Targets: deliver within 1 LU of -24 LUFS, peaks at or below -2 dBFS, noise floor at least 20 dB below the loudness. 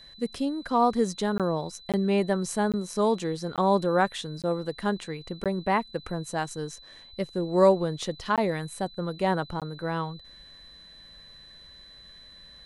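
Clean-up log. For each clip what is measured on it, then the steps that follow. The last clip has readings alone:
dropouts 8; longest dropout 17 ms; steady tone 4 kHz; tone level -48 dBFS; loudness -27.5 LUFS; peak level -8.5 dBFS; loudness target -24.0 LUFS
-> interpolate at 1.38/1.92/2.72/3.56/4.42/5.44/8.36/9.60 s, 17 ms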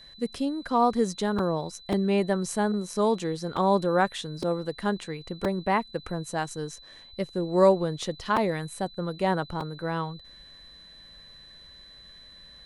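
dropouts 0; steady tone 4 kHz; tone level -48 dBFS
-> band-stop 4 kHz, Q 30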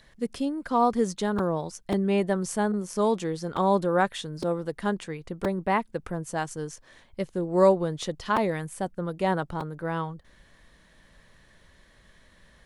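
steady tone not found; loudness -27.5 LUFS; peak level -8.5 dBFS; loudness target -24.0 LUFS
-> trim +3.5 dB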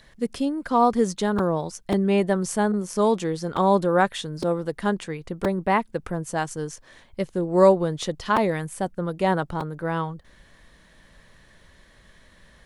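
loudness -24.0 LUFS; peak level -5.0 dBFS; noise floor -55 dBFS

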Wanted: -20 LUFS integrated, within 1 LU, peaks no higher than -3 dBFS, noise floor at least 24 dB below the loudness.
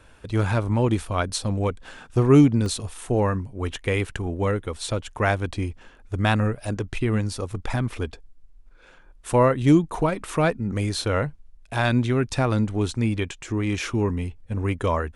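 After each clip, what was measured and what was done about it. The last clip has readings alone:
dropouts 1; longest dropout 1.2 ms; loudness -24.0 LUFS; peak level -5.0 dBFS; loudness target -20.0 LUFS
-> interpolate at 2.66 s, 1.2 ms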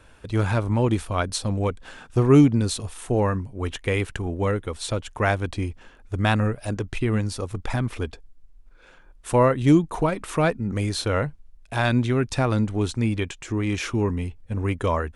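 dropouts 0; loudness -24.0 LUFS; peak level -5.0 dBFS; loudness target -20.0 LUFS
-> trim +4 dB; peak limiter -3 dBFS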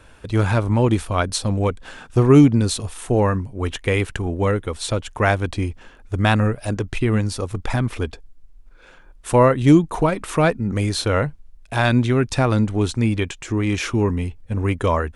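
loudness -20.0 LUFS; peak level -3.0 dBFS; noise floor -47 dBFS

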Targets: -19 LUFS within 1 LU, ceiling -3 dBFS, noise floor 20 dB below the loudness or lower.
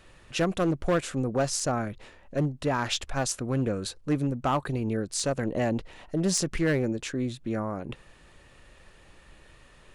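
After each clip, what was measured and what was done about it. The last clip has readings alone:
clipped samples 0.9%; clipping level -19.0 dBFS; loudness -29.0 LUFS; peak level -19.0 dBFS; loudness target -19.0 LUFS
-> clip repair -19 dBFS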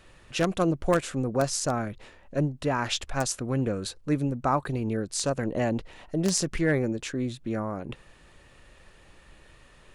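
clipped samples 0.0%; loudness -28.5 LUFS; peak level -10.0 dBFS; loudness target -19.0 LUFS
-> trim +9.5 dB; peak limiter -3 dBFS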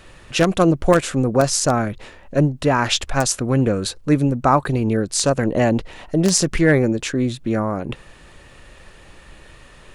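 loudness -19.0 LUFS; peak level -3.0 dBFS; noise floor -46 dBFS

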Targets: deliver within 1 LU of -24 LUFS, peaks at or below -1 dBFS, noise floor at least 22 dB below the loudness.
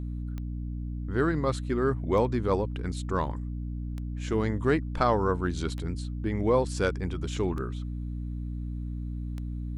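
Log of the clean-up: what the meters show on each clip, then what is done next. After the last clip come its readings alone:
clicks found 6; hum 60 Hz; highest harmonic 300 Hz; hum level -31 dBFS; loudness -30.0 LUFS; peak level -10.0 dBFS; loudness target -24.0 LUFS
-> de-click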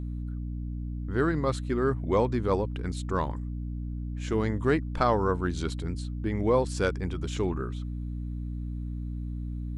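clicks found 0; hum 60 Hz; highest harmonic 300 Hz; hum level -31 dBFS
-> hum notches 60/120/180/240/300 Hz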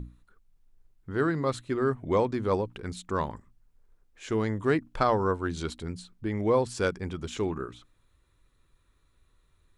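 hum not found; loudness -29.5 LUFS; peak level -9.5 dBFS; loudness target -24.0 LUFS
-> trim +5.5 dB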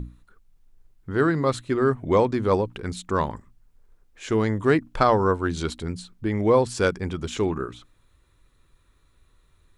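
loudness -24.0 LUFS; peak level -4.0 dBFS; noise floor -62 dBFS

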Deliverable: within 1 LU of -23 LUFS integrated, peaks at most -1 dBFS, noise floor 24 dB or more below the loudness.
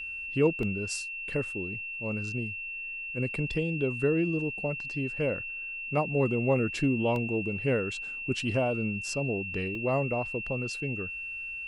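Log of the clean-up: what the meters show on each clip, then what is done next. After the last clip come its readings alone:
dropouts 3; longest dropout 1.6 ms; steady tone 2.7 kHz; tone level -35 dBFS; loudness -30.0 LUFS; peak level -13.0 dBFS; loudness target -23.0 LUFS
-> interpolate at 0.63/7.16/9.75 s, 1.6 ms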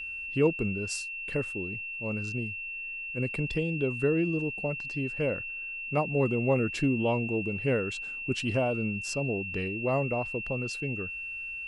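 dropouts 0; steady tone 2.7 kHz; tone level -35 dBFS
-> band-stop 2.7 kHz, Q 30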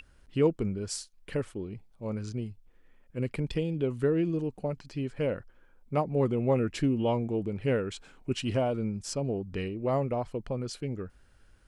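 steady tone not found; loudness -31.5 LUFS; peak level -13.5 dBFS; loudness target -23.0 LUFS
-> trim +8.5 dB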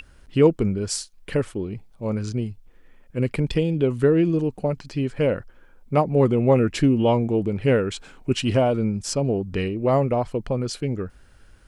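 loudness -23.0 LUFS; peak level -5.0 dBFS; noise floor -51 dBFS

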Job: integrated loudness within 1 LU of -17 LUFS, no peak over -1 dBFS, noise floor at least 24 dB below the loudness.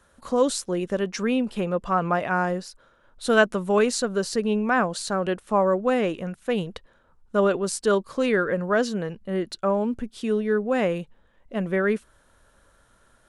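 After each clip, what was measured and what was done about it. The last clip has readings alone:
loudness -24.5 LUFS; peak level -4.0 dBFS; loudness target -17.0 LUFS
-> trim +7.5 dB; peak limiter -1 dBFS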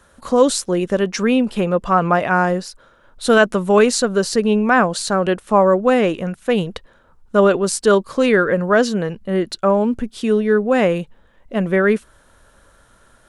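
loudness -17.0 LUFS; peak level -1.0 dBFS; noise floor -53 dBFS

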